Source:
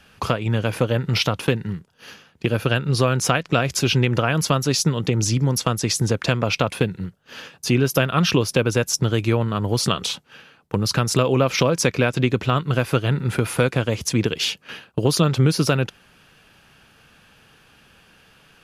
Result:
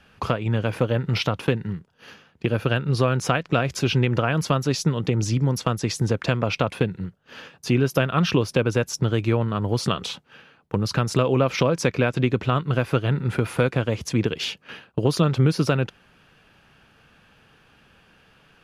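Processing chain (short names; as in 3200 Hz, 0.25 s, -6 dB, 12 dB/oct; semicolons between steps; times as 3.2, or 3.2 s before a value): high shelf 4600 Hz -10.5 dB; gain -1.5 dB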